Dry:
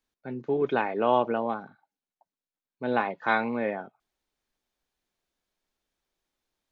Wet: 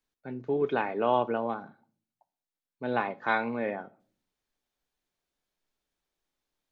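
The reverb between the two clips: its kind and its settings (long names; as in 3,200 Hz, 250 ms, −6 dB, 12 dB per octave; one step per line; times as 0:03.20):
rectangular room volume 420 cubic metres, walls furnished, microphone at 0.36 metres
level −2.5 dB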